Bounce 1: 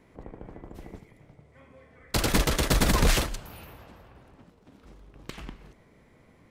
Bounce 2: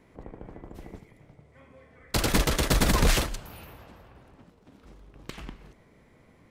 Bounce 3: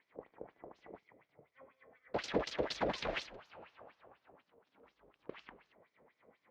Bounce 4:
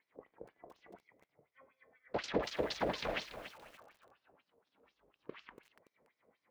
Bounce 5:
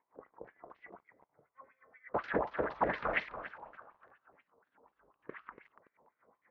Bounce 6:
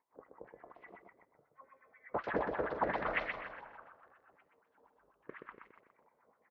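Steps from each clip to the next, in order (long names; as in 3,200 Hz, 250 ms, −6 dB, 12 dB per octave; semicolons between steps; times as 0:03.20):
no processing that can be heard
dynamic equaliser 1,200 Hz, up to −6 dB, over −43 dBFS, Q 1.4; auto-filter band-pass sine 4.1 Hz 470–6,700 Hz; high-frequency loss of the air 250 metres; level +2.5 dB
noise reduction from a noise print of the clip's start 6 dB; feedback echo at a low word length 286 ms, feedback 35%, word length 9 bits, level −10.5 dB
low-pass on a step sequencer 6.7 Hz 950–2,000 Hz
repeating echo 125 ms, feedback 28%, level −5 dB; level −2.5 dB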